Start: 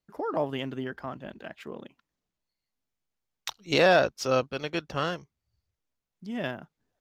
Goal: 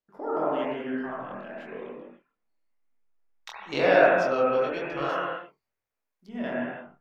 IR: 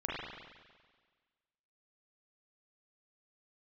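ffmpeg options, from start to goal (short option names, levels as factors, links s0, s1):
-filter_complex "[0:a]lowpass=f=2500:p=1,equalizer=f=91:w=0.7:g=-13[s0];[1:a]atrim=start_sample=2205,afade=t=out:st=0.28:d=0.01,atrim=end_sample=12789,asetrate=31311,aresample=44100[s1];[s0][s1]afir=irnorm=-1:irlink=0,flanger=delay=20:depth=5.8:speed=1,asettb=1/sr,asplit=3[s2][s3][s4];[s2]atrim=end=5.094[s5];[s3]atrim=start=5.09:end=6.28,asetpts=PTS-STARTPTS,afade=t=in:d=0.004:c=qsin,afade=t=out:st=1.186:d=0.004:c=qsin,aemphasis=mode=production:type=bsi[s6];[s4]atrim=start=6.276[s7];[s5][s6]acrossfade=d=0.004:c1=hsin:c2=qsin[s8];[s8][s7]acrossfade=d=0.004:c1=qsin:c2=hsin"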